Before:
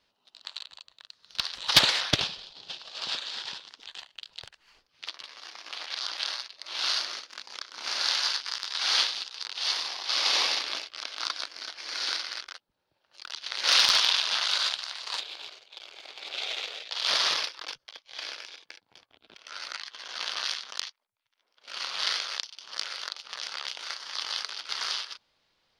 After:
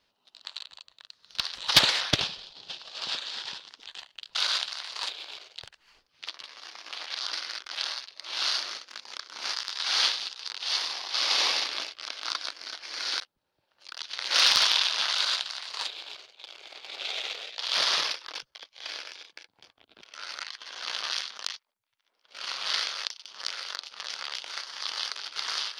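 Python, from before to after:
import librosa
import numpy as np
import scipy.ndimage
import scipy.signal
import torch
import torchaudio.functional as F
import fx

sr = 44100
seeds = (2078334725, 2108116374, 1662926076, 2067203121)

y = fx.edit(x, sr, fx.cut(start_s=7.95, length_s=0.53),
    fx.move(start_s=12.15, length_s=0.38, to_s=6.13),
    fx.duplicate(start_s=14.46, length_s=1.2, to_s=4.35), tone=tone)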